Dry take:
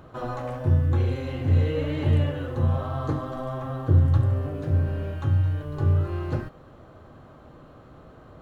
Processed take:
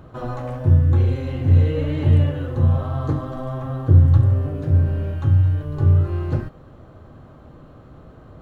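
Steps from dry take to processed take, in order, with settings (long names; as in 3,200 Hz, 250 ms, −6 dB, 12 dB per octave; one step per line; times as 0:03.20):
low-shelf EQ 290 Hz +7 dB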